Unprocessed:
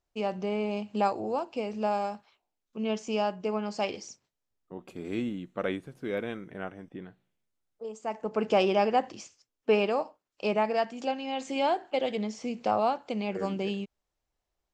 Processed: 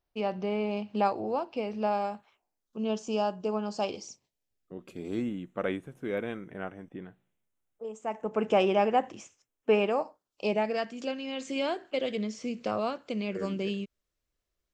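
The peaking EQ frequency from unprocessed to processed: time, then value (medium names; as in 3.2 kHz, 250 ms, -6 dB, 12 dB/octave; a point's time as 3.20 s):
peaking EQ -14 dB 0.4 oct
2.00 s 7.2 kHz
2.80 s 2.1 kHz
3.82 s 2.1 kHz
4.89 s 770 Hz
5.30 s 4.6 kHz
9.89 s 4.6 kHz
10.76 s 820 Hz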